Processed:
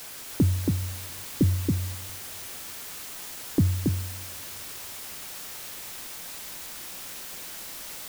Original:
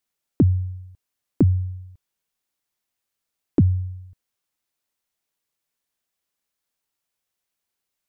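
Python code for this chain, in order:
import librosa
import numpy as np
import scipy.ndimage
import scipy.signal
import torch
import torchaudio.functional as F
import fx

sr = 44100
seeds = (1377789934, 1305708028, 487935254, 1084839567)

y = fx.steep_lowpass(x, sr, hz=590.0, slope=96, at=(0.82, 1.82))
y = fx.quant_dither(y, sr, seeds[0], bits=6, dither='triangular')
y = y + 10.0 ** (-3.5 / 20.0) * np.pad(y, (int(277 * sr / 1000.0), 0))[:len(y)]
y = fx.rev_double_slope(y, sr, seeds[1], early_s=0.3, late_s=3.0, knee_db=-17, drr_db=15.0)
y = y * librosa.db_to_amplitude(-5.0)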